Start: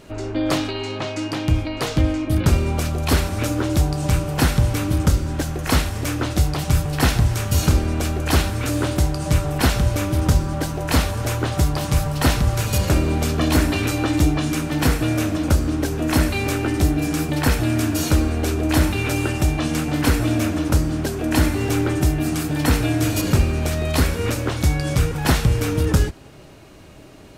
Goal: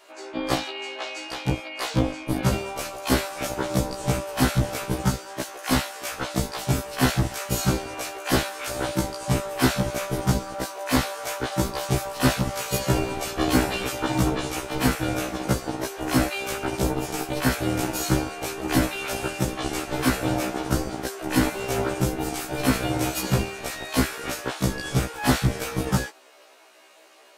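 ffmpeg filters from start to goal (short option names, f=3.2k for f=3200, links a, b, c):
-filter_complex "[0:a]lowshelf=f=110:t=q:w=1.5:g=-7,acrossover=split=490[a][b];[a]acrusher=bits=2:mix=0:aa=0.5[c];[c][b]amix=inputs=2:normalize=0,afftfilt=real='re*1.73*eq(mod(b,3),0)':imag='im*1.73*eq(mod(b,3),0)':win_size=2048:overlap=0.75"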